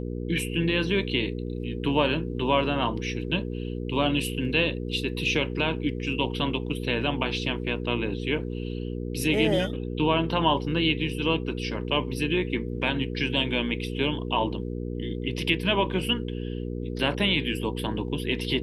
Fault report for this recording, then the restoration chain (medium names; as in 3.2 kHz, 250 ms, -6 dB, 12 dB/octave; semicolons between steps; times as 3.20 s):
hum 60 Hz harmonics 8 -32 dBFS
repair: de-hum 60 Hz, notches 8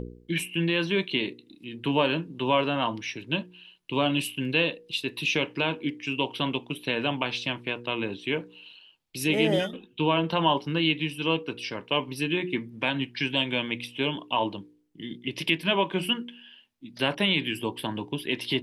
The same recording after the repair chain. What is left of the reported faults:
nothing left